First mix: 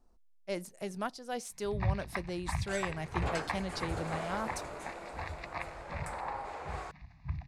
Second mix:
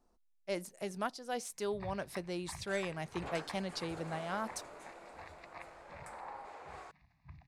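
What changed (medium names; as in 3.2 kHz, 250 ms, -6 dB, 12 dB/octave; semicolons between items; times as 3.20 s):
first sound -10.5 dB; second sound -7.5 dB; master: add bass shelf 110 Hz -10.5 dB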